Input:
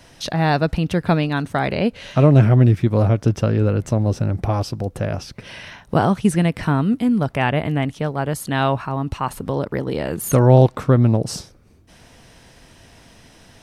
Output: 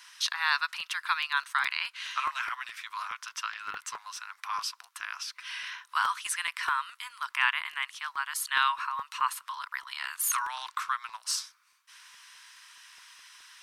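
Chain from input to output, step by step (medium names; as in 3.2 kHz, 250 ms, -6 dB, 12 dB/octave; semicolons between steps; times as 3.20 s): Chebyshev high-pass 1 kHz, order 6; crackling interface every 0.21 s, samples 128, repeat, from 0.59 s; 3.52–3.97 s: loudspeaker Doppler distortion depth 0.72 ms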